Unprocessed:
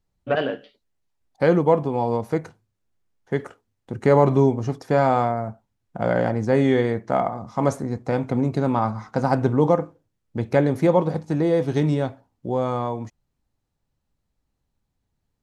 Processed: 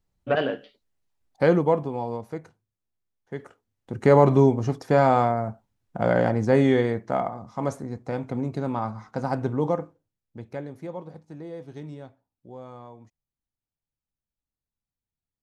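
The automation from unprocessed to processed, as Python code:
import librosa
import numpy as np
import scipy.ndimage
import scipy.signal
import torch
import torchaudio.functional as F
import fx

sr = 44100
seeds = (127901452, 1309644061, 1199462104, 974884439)

y = fx.gain(x, sr, db=fx.line((1.46, -1.0), (2.35, -10.5), (3.35, -10.5), (4.06, 0.0), (6.55, 0.0), (7.57, -6.5), (9.83, -6.5), (10.74, -18.0)))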